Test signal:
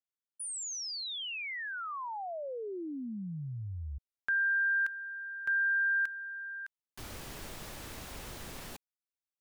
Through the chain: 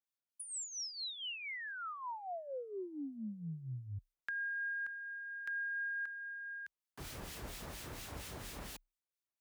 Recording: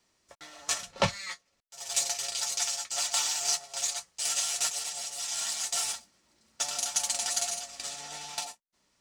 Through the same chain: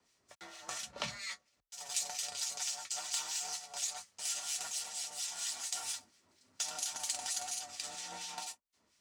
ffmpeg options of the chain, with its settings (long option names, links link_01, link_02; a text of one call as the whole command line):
ffmpeg -i in.wav -filter_complex "[0:a]acompressor=threshold=-45dB:ratio=2:attack=28:release=20:detection=peak,acrossover=split=1700[link_01][link_02];[link_01]aeval=exprs='val(0)*(1-0.7/2+0.7/2*cos(2*PI*4.3*n/s))':channel_layout=same[link_03];[link_02]aeval=exprs='val(0)*(1-0.7/2-0.7/2*cos(2*PI*4.3*n/s))':channel_layout=same[link_04];[link_03][link_04]amix=inputs=2:normalize=0,afreqshift=31,volume=1dB" out.wav